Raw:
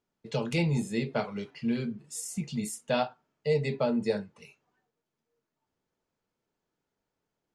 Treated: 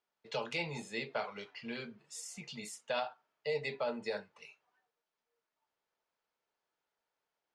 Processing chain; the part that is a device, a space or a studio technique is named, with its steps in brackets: DJ mixer with the lows and highs turned down (three-band isolator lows -18 dB, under 520 Hz, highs -15 dB, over 6.1 kHz; peak limiter -25.5 dBFS, peak gain reduction 8 dB)

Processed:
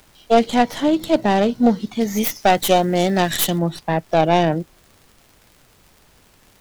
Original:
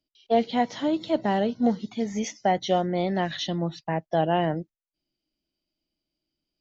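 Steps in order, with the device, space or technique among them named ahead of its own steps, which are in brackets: record under a worn stylus (tracing distortion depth 0.22 ms; crackle; pink noise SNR 34 dB); 2.01–3.59 s: treble shelf 3.5 kHz +8 dB; trim +7.5 dB

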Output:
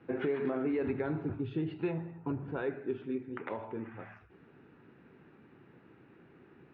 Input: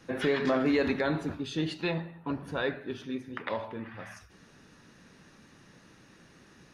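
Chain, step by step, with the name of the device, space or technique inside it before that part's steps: 0.81–2.51 s: peaking EQ 110 Hz +13.5 dB 0.68 oct; bass amplifier (compression 4:1, threshold -30 dBFS, peak gain reduction 7 dB; cabinet simulation 78–2200 Hz, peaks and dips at 81 Hz -5 dB, 190 Hz -5 dB, 380 Hz +6 dB, 580 Hz -6 dB, 1.1 kHz -6 dB, 1.8 kHz -8 dB)

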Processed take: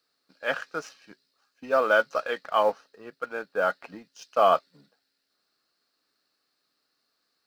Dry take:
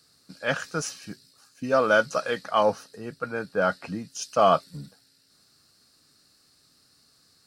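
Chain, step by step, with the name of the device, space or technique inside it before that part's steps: phone line with mismatched companding (band-pass 370–3500 Hz; companding laws mixed up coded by A)

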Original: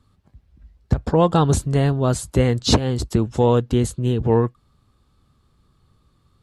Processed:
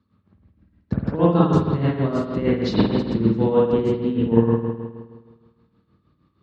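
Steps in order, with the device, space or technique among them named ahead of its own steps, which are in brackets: combo amplifier with spring reverb and tremolo (spring tank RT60 1.5 s, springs 52 ms, chirp 35 ms, DRR -6 dB; tremolo 6.4 Hz, depth 64%; cabinet simulation 95–4600 Hz, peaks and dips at 200 Hz +8 dB, 310 Hz +5 dB, 760 Hz -6 dB, 3.3 kHz -5 dB); trim -6 dB

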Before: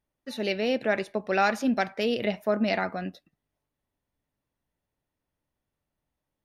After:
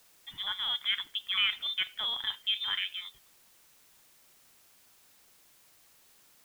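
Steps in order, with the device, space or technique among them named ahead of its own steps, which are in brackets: scrambled radio voice (band-pass 340–2700 Hz; frequency inversion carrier 3.8 kHz; white noise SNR 25 dB); trim -4.5 dB

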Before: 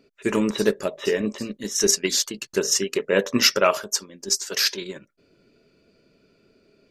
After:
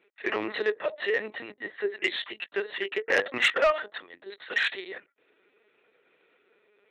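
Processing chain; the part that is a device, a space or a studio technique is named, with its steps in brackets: talking toy (LPC vocoder at 8 kHz pitch kept; high-pass 540 Hz 12 dB/octave; peaking EQ 1.9 kHz +11 dB 0.24 oct; saturation -14 dBFS, distortion -16 dB); 1.51–2.02 s: low-pass 2 kHz 12 dB/octave

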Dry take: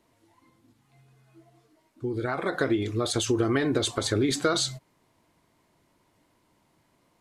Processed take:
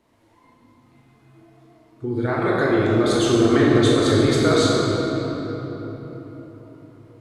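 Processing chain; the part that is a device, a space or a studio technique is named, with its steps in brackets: swimming-pool hall (reverberation RT60 4.1 s, pre-delay 17 ms, DRR -5.5 dB; treble shelf 3.9 kHz -6.5 dB); trim +2.5 dB

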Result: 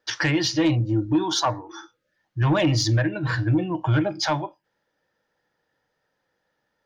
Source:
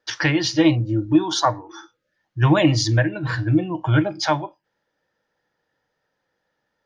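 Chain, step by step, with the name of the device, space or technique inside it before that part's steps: soft clipper into limiter (saturation -10 dBFS, distortion -17 dB; peak limiter -14 dBFS, peak gain reduction 3 dB)

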